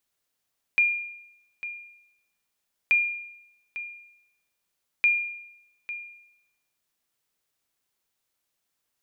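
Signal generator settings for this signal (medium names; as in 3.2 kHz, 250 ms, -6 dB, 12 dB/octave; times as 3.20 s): sonar ping 2.41 kHz, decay 0.83 s, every 2.13 s, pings 3, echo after 0.85 s, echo -14 dB -14.5 dBFS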